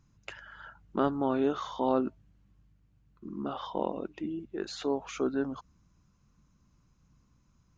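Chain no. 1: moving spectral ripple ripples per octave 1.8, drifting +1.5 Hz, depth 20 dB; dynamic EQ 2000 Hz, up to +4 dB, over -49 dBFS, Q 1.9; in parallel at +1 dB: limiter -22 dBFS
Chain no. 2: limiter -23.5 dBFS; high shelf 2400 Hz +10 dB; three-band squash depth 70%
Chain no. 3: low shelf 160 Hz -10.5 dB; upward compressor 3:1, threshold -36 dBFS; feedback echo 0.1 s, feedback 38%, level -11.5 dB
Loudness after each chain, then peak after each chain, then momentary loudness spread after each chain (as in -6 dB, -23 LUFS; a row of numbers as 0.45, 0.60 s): -25.5, -36.0, -34.0 LUFS; -9.0, -15.0, -13.5 dBFS; 13, 17, 21 LU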